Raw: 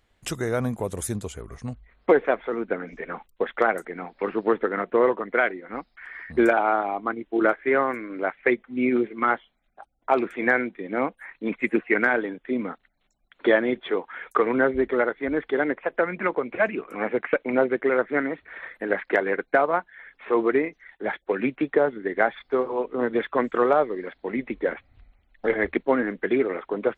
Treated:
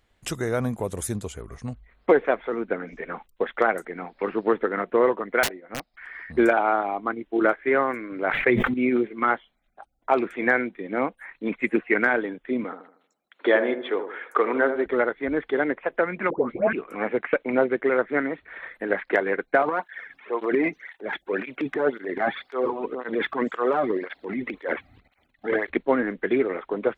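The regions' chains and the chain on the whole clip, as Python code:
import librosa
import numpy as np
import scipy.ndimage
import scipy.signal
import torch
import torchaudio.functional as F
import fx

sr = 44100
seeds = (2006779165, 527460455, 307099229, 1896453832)

y = fx.chain(x, sr, fx.peak_eq(hz=630.0, db=8.5, octaves=0.59),
    fx.overflow_wrap(gain_db=18.5),
    fx.upward_expand(threshold_db=-40.0, expansion=1.5), at=(5.43, 5.94))
y = fx.chain(y, sr, fx.peak_eq(hz=120.0, db=9.0, octaves=0.59),
    fx.sustainer(db_per_s=28.0), at=(8.12, 8.74))
y = fx.chain(y, sr, fx.highpass(hz=290.0, slope=12),
    fx.echo_wet_lowpass(ms=78, feedback_pct=39, hz=1300.0, wet_db=-8.0), at=(12.64, 14.86))
y = fx.chain(y, sr, fx.tilt_shelf(db=5.5, hz=810.0),
    fx.dispersion(late='highs', ms=128.0, hz=1200.0), at=(16.3, 16.73))
y = fx.chain(y, sr, fx.transient(attack_db=-4, sustain_db=11),
    fx.flanger_cancel(hz=1.9, depth_ms=2.3), at=(19.62, 25.7))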